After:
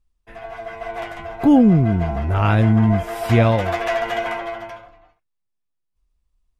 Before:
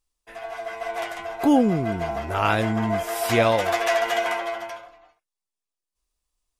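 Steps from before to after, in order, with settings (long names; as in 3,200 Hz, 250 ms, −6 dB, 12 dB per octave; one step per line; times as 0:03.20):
bass and treble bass +14 dB, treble −9 dB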